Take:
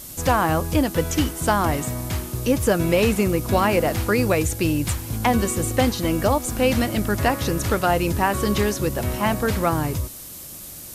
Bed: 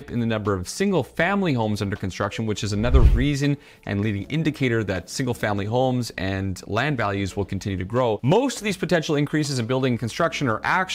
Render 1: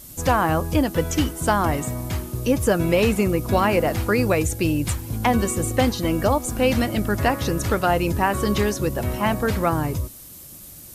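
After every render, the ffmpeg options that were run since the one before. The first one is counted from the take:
-af "afftdn=nr=6:nf=-38"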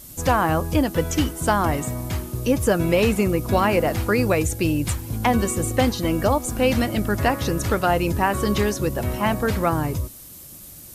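-af anull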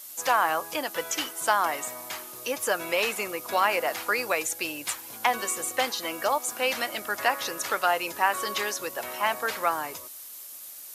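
-af "highpass=810,equalizer=f=8400:t=o:w=0.26:g=-2.5"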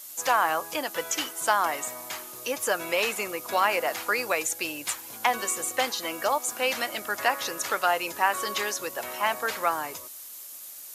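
-af "equalizer=f=6900:w=4:g=2.5"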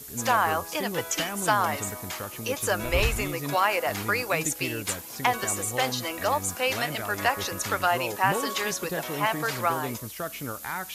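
-filter_complex "[1:a]volume=0.237[s0];[0:a][s0]amix=inputs=2:normalize=0"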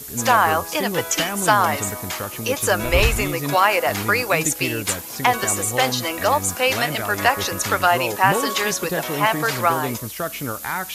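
-af "volume=2.24,alimiter=limit=0.794:level=0:latency=1"

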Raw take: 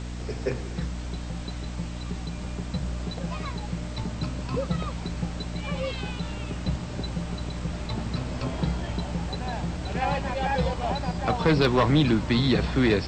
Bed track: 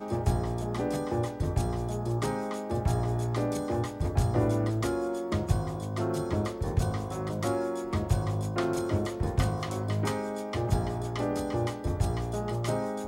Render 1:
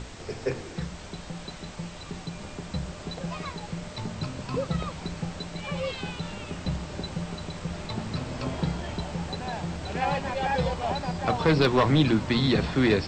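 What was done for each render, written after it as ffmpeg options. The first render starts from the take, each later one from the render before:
-af "bandreject=f=60:t=h:w=6,bandreject=f=120:t=h:w=6,bandreject=f=180:t=h:w=6,bandreject=f=240:t=h:w=6,bandreject=f=300:t=h:w=6"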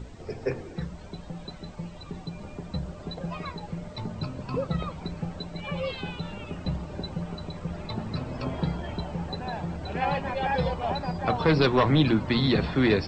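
-af "afftdn=nr=12:nf=-42"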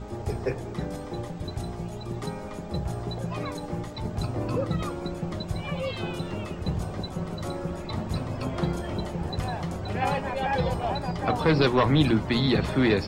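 -filter_complex "[1:a]volume=0.531[s0];[0:a][s0]amix=inputs=2:normalize=0"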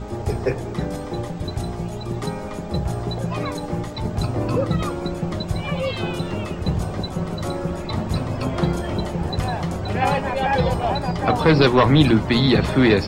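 -af "volume=2.11"

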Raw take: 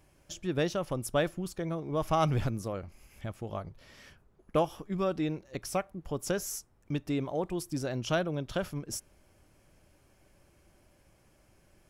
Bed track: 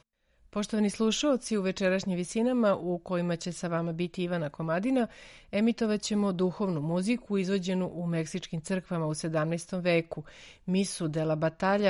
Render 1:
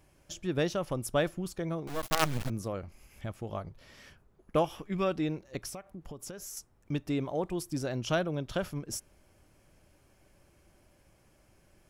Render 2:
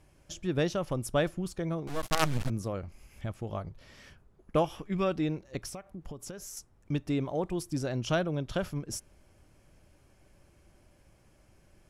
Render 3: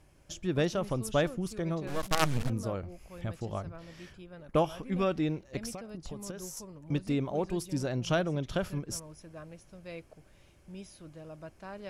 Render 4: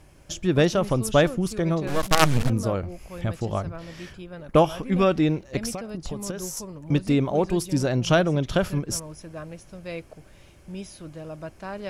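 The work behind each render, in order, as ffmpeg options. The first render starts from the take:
-filter_complex "[0:a]asettb=1/sr,asplit=3[s0][s1][s2];[s0]atrim=end=1.874[s3];[s1]atrim=start=1.87:end=2.5,asetpts=PTS-STARTPTS,afade=t=in:d=0.004:c=qsin,afade=t=out:st=0.626:d=0.004:c=qsin,acrusher=bits=4:dc=4:mix=0:aa=0.000001[s4];[s2]atrim=start=2.496[s5];[s3][s4]acrossfade=d=0.004:c1=hsin:c2=qsin[s6];[s6][s5]acrossfade=d=0.004:c1=qsin:c2=hsin,asettb=1/sr,asplit=3[s7][s8][s9];[s7]atrim=end=4.644[s10];[s8]atrim=start=4.64:end=5.15,asetpts=PTS-STARTPTS,afade=t=in:d=0.004:c=qsin,afade=t=out:st=0.506:d=0.004:c=qsin,equalizer=f=2400:t=o:w=1:g=7.5[s11];[s9]atrim=start=5.146[s12];[s10][s11]acrossfade=d=0.004:c1=hsin:c2=qsin[s13];[s13][s12]acrossfade=d=0.004:c1=qsin:c2=hsin,asettb=1/sr,asplit=3[s14][s15][s16];[s14]atrim=end=5.694[s17];[s15]atrim=start=5.69:end=6.57,asetpts=PTS-STARTPTS,afade=t=in:d=0.004:c=qsin,afade=t=out:st=0.876:d=0.004:c=qsin,acompressor=threshold=0.0112:ratio=8:attack=3.2:release=140:knee=1:detection=peak[s18];[s16]atrim=start=6.566[s19];[s17][s18]acrossfade=d=0.004:c1=hsin:c2=qsin[s20];[s20][s19]acrossfade=d=0.004:c1=qsin:c2=hsin"
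-af "lowpass=12000,lowshelf=f=180:g=4"
-filter_complex "[1:a]volume=0.126[s0];[0:a][s0]amix=inputs=2:normalize=0"
-af "volume=2.82"

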